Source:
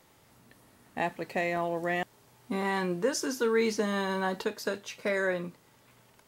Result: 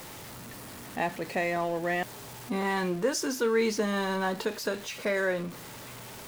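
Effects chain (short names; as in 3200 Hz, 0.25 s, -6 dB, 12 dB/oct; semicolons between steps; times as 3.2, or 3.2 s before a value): zero-crossing step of -39 dBFS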